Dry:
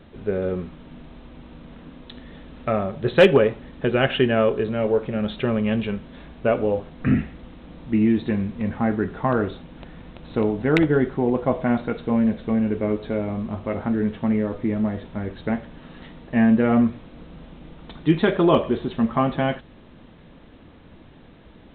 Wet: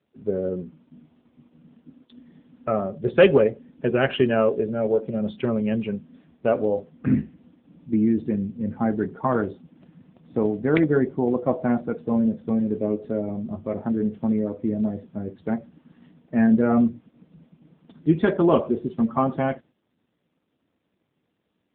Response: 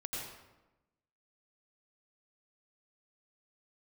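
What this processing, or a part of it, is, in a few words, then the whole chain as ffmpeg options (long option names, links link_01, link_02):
mobile call with aggressive noise cancelling: -af "agate=range=-9dB:threshold=-42dB:ratio=16:detection=peak,highpass=frequency=120:poles=1,afftdn=noise_reduction=14:noise_floor=-30" -ar 8000 -c:a libopencore_amrnb -b:a 7950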